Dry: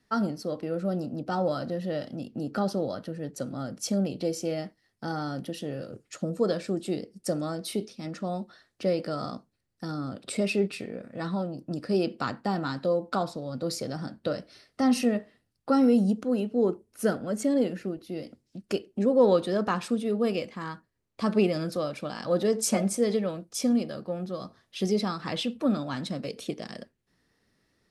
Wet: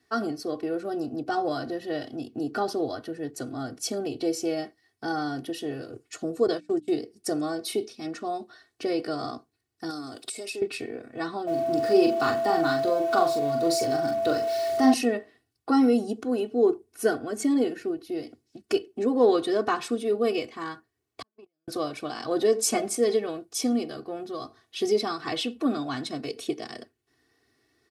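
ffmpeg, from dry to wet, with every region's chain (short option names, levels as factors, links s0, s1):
-filter_complex "[0:a]asettb=1/sr,asplit=3[s0][s1][s2];[s0]atrim=end=6.474[s3];[s1]atrim=start=6.47:end=6.88,asetpts=PTS-STARTPTS,afade=t=in:d=0.004:c=qsin,afade=t=out:st=0.406:d=0.004:c=qsin,agate=range=0.0447:threshold=0.0251:ratio=16:release=100:detection=peak,bandreject=f=60:t=h:w=6,bandreject=f=120:t=h:w=6,bandreject=f=180:t=h:w=6,bandreject=f=240:t=h:w=6,bandreject=f=300:t=h:w=6[s4];[s2]atrim=start=6.876[s5];[s3][s4]acrossfade=d=0.004:c1=hsin:c2=qsin[s6];[s6][s5]acrossfade=d=0.004:c1=qsin:c2=hsin,asettb=1/sr,asplit=3[s7][s8][s9];[s7]atrim=end=9.904[s10];[s8]atrim=start=9.9:end=10.62,asetpts=PTS-STARTPTS,afade=t=in:d=0.004:c=qsin,afade=t=out:st=0.716:d=0.004:c=qsin,bass=f=250:g=-8,treble=f=4000:g=14,acompressor=threshold=0.02:ratio=16:attack=3.2:release=140:knee=1:detection=peak[s11];[s9]atrim=start=10.616[s12];[s10][s11]acrossfade=d=0.004:c1=hsin:c2=qsin[s13];[s13][s12]acrossfade=d=0.004:c1=qsin:c2=hsin,asettb=1/sr,asplit=3[s14][s15][s16];[s14]atrim=end=11.474[s17];[s15]atrim=start=11.47:end=14.94,asetpts=PTS-STARTPTS,afade=t=in:d=0.004:c=qsin,afade=t=out:st=3.466:d=0.004:c=qsin,aeval=exprs='val(0)+0.5*0.00944*sgn(val(0))':c=same,asplit=2[s18][s19];[s19]adelay=42,volume=0.562[s20];[s18][s20]amix=inputs=2:normalize=0,atrim=end_sample=153027,aeval=exprs='val(0)+0.0398*sin(2*PI*670*n/s)':c=same[s21];[s16]atrim=start=14.936[s22];[s17][s21]acrossfade=d=0.004:c1=hsin:c2=qsin[s23];[s23][s22]acrossfade=d=0.004:c1=qsin:c2=hsin,asettb=1/sr,asplit=3[s24][s25][s26];[s24]atrim=end=21.224[s27];[s25]atrim=start=21.22:end=21.68,asetpts=PTS-STARTPTS,afade=t=in:d=0.004:c=qsin,afade=t=out:st=0.456:d=0.004:c=qsin,lowshelf=f=160:g=9,agate=range=0.00126:threshold=0.2:ratio=16:release=100:detection=peak[s28];[s26]atrim=start=21.676[s29];[s27][s28]acrossfade=d=0.004:c1=hsin:c2=qsin[s30];[s30][s29]acrossfade=d=0.004:c1=qsin:c2=hsin,highpass=96,aecho=1:1:2.7:0.96"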